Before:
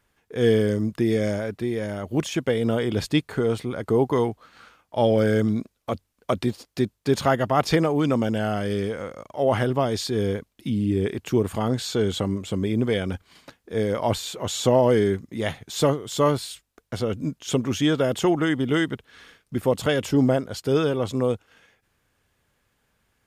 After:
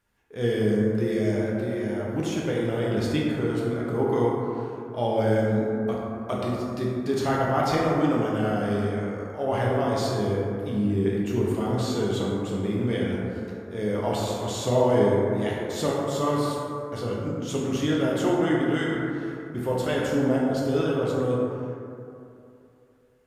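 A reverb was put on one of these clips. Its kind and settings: plate-style reverb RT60 2.7 s, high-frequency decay 0.3×, DRR -5 dB; trim -8 dB

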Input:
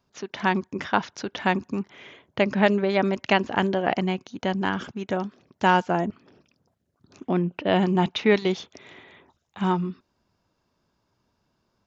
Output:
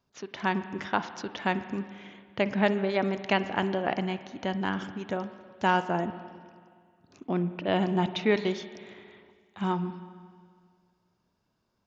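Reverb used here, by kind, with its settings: spring tank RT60 2 s, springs 45/52 ms, chirp 20 ms, DRR 11.5 dB; trim -5 dB

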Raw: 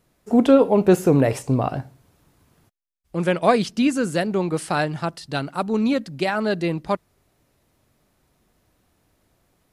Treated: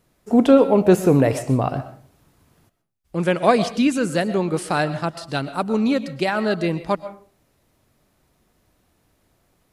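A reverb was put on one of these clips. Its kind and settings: algorithmic reverb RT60 0.42 s, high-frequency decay 0.55×, pre-delay 85 ms, DRR 13 dB; trim +1 dB

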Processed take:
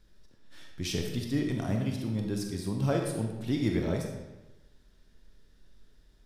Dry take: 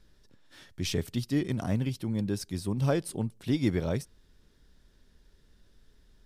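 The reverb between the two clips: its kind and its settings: algorithmic reverb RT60 1.1 s, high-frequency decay 0.8×, pre-delay 0 ms, DRR 1.5 dB; trim -2.5 dB

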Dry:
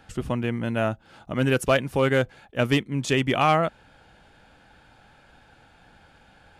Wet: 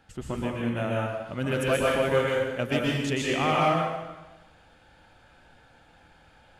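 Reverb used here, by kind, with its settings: plate-style reverb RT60 1.1 s, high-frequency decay 0.95×, pre-delay 110 ms, DRR -4.5 dB; trim -7.5 dB

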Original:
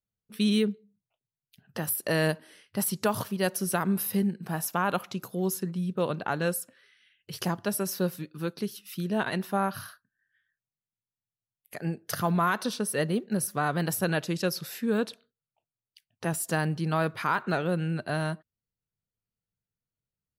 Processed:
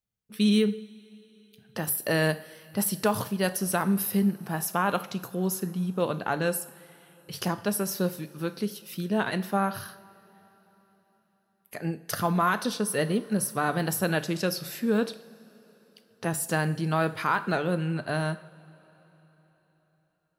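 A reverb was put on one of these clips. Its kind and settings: two-slope reverb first 0.53 s, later 4.2 s, from -18 dB, DRR 10.5 dB; trim +1 dB

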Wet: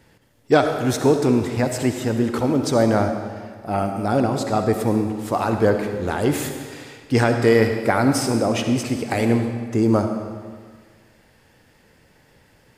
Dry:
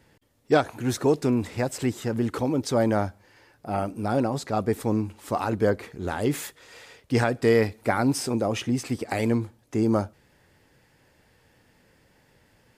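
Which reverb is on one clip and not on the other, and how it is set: algorithmic reverb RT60 1.7 s, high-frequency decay 0.9×, pre-delay 25 ms, DRR 5.5 dB; trim +4.5 dB

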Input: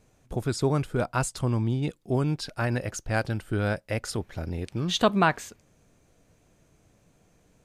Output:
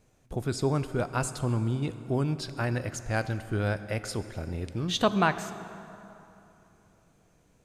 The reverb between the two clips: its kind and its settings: plate-style reverb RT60 3.1 s, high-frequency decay 0.65×, DRR 11.5 dB; trim -2.5 dB

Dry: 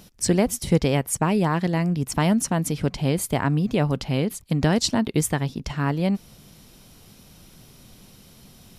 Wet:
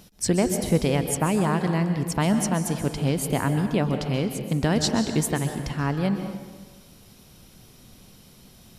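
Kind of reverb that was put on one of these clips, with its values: plate-style reverb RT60 1.4 s, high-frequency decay 0.7×, pre-delay 115 ms, DRR 7 dB; trim -2 dB

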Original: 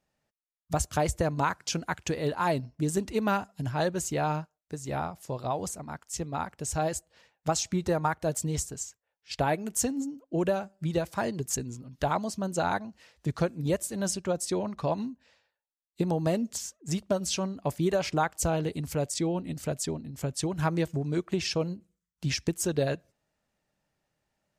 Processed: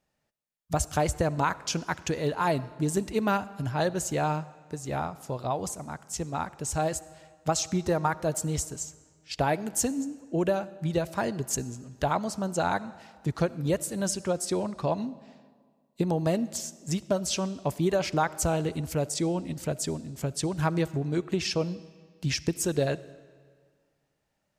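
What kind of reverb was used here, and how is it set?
algorithmic reverb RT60 1.8 s, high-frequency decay 0.85×, pre-delay 25 ms, DRR 18 dB; trim +1 dB

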